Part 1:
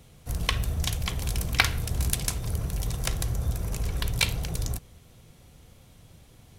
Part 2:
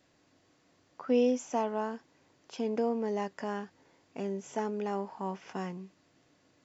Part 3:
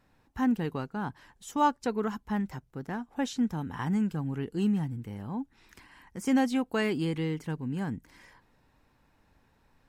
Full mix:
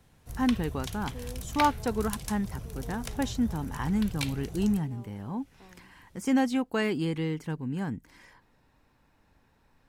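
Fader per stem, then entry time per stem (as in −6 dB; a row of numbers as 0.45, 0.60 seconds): −10.0, −18.0, +0.5 decibels; 0.00, 0.05, 0.00 seconds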